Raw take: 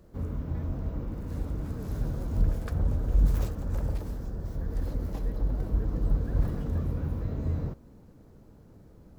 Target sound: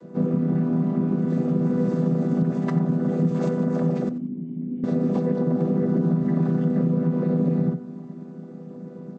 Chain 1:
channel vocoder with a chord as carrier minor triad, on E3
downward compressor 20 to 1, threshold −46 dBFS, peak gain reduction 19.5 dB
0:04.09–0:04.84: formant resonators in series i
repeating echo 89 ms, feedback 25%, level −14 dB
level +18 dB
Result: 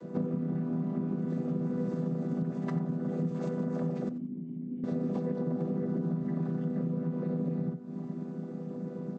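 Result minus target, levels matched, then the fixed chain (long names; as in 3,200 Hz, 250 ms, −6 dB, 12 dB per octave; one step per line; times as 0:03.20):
downward compressor: peak gain reduction +10.5 dB
channel vocoder with a chord as carrier minor triad, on E3
downward compressor 20 to 1, threshold −35 dBFS, peak gain reduction 9 dB
0:04.09–0:04.84: formant resonators in series i
repeating echo 89 ms, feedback 25%, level −14 dB
level +18 dB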